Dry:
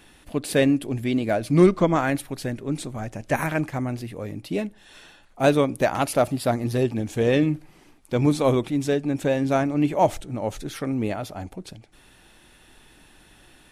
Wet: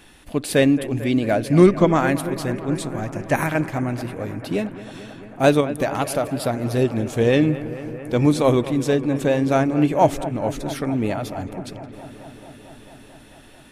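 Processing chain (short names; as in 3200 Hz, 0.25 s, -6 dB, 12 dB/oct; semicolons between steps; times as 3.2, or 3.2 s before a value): 5.6–6.77 compressor 4:1, threshold -22 dBFS, peak gain reduction 7 dB; on a send: analogue delay 0.222 s, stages 4096, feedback 81%, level -15 dB; on the sum: gain +3 dB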